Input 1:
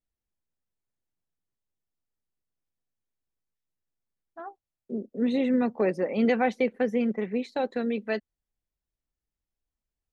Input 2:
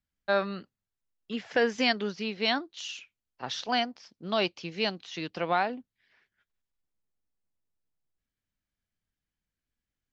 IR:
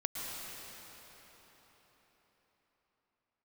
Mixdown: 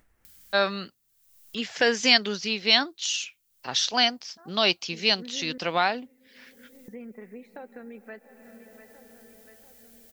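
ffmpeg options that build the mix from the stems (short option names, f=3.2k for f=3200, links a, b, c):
-filter_complex "[0:a]highshelf=f=2.6k:t=q:w=1.5:g=-12,volume=-18.5dB,asplit=3[a][b][c];[a]atrim=end=5.58,asetpts=PTS-STARTPTS,afade=t=out:st=5.576:d=0.004:c=hsin[d];[b]atrim=start=5.58:end=6.88,asetpts=PTS-STARTPTS,volume=0[e];[c]atrim=start=6.88,asetpts=PTS-STARTPTS,afade=t=in:d=0.004:c=hsin[f];[d][e][f]concat=n=3:v=0:a=1,asplit=3[g][h][i];[h]volume=-17dB[j];[i]volume=-21dB[k];[1:a]aemphasis=mode=production:type=50kf,adelay=250,volume=1dB[l];[2:a]atrim=start_sample=2205[m];[j][m]afir=irnorm=-1:irlink=0[n];[k]aecho=0:1:690|1380|2070|2760|3450|4140:1|0.41|0.168|0.0689|0.0283|0.0116[o];[g][l][n][o]amix=inputs=4:normalize=0,highshelf=f=2.1k:g=7.5,acompressor=mode=upward:threshold=-36dB:ratio=2.5"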